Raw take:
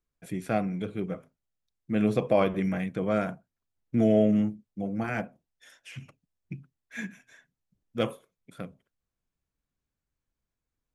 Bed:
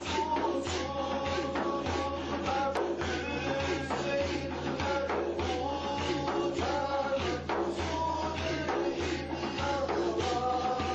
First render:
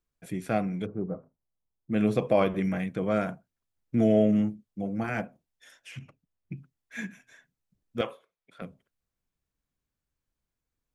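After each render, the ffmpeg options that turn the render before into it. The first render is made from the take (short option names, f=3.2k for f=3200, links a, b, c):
-filter_complex "[0:a]asplit=3[a][b][c];[a]afade=t=out:st=0.85:d=0.02[d];[b]lowpass=f=1.1k:w=0.5412,lowpass=f=1.1k:w=1.3066,afade=t=in:st=0.85:d=0.02,afade=t=out:st=1.91:d=0.02[e];[c]afade=t=in:st=1.91:d=0.02[f];[d][e][f]amix=inputs=3:normalize=0,asettb=1/sr,asplit=3[g][h][i];[g]atrim=end=5.994[j];[h]atrim=start=5.99:end=6.57,asetpts=PTS-STARTPTS,afade=t=in:d=0.004:c=qsin,afade=t=out:st=0.576:d=0.004:c=qsin,lowpass=f=2.2k:p=1[k];[i]atrim=start=6.566[l];[j][k]acrossfade=d=0.004:c1=hsin:c2=qsin[m];[m][l]acrossfade=d=0.004:c1=qsin:c2=hsin,asettb=1/sr,asplit=3[n][o][p];[n]atrim=end=8.014[q];[o]atrim=start=8.01:end=8.62,asetpts=PTS-STARTPTS,afade=t=in:d=0.004:c=qsin,afade=t=out:st=0.606:d=0.004:c=qsin,acrossover=split=450 4700:gain=0.178 1 0.178[r][s][t];[r][s][t]amix=inputs=3:normalize=0[u];[p]atrim=start=8.616[v];[q][u]acrossfade=d=0.004:c1=hsin:c2=qsin[w];[w][v]acrossfade=d=0.004:c1=qsin:c2=hsin"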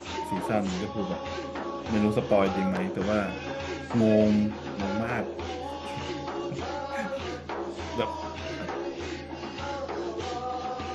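-filter_complex "[1:a]volume=-2.5dB[a];[0:a][a]amix=inputs=2:normalize=0"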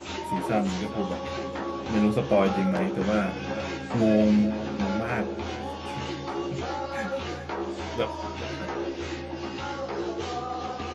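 -filter_complex "[0:a]asplit=2[a][b];[b]adelay=15,volume=-5dB[c];[a][c]amix=inputs=2:normalize=0,aecho=1:1:420|840|1260|1680:0.211|0.0951|0.0428|0.0193"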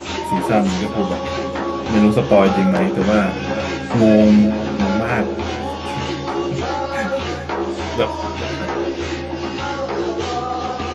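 -af "volume=9.5dB,alimiter=limit=-1dB:level=0:latency=1"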